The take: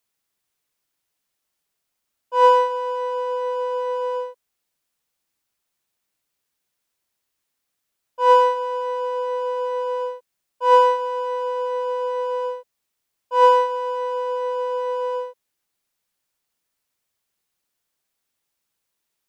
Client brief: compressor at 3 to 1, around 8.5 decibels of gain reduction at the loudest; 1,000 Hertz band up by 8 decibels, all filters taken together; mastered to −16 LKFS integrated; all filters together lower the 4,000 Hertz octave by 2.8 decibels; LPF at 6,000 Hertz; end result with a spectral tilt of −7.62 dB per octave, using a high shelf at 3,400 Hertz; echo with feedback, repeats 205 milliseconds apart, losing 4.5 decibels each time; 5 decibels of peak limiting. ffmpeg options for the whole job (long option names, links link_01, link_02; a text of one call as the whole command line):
ffmpeg -i in.wav -af "lowpass=6000,equalizer=frequency=1000:width_type=o:gain=8,highshelf=frequency=3400:gain=4,equalizer=frequency=4000:width_type=o:gain=-8,acompressor=threshold=-15dB:ratio=3,alimiter=limit=-13dB:level=0:latency=1,aecho=1:1:205|410|615|820|1025|1230|1435|1640|1845:0.596|0.357|0.214|0.129|0.0772|0.0463|0.0278|0.0167|0.01,volume=7.5dB" out.wav